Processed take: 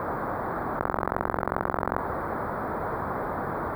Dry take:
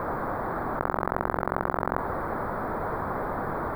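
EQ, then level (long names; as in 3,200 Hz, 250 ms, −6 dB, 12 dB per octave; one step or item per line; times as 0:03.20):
high-pass filter 41 Hz
0.0 dB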